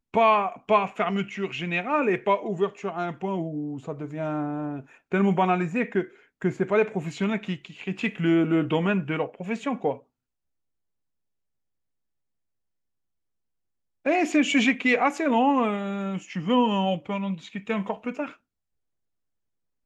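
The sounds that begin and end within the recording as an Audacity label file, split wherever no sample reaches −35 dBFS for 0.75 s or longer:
14.060000	18.300000	sound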